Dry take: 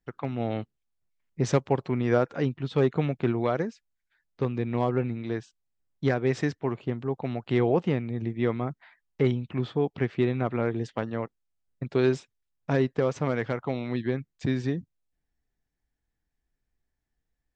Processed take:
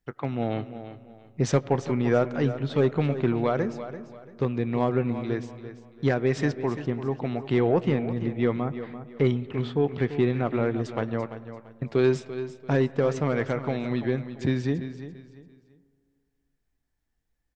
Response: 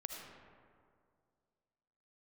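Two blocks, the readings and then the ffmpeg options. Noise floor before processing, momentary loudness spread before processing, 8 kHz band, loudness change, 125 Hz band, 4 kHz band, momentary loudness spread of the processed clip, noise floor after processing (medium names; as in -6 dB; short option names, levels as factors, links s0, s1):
-82 dBFS, 9 LU, no reading, +1.5 dB, +1.5 dB, +1.5 dB, 14 LU, -76 dBFS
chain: -filter_complex "[0:a]asoftclip=type=tanh:threshold=0.266,aecho=1:1:340|680|1020:0.251|0.0754|0.0226,asplit=2[s0][s1];[1:a]atrim=start_sample=2205,lowpass=3300,adelay=21[s2];[s1][s2]afir=irnorm=-1:irlink=0,volume=0.224[s3];[s0][s3]amix=inputs=2:normalize=0,volume=1.26"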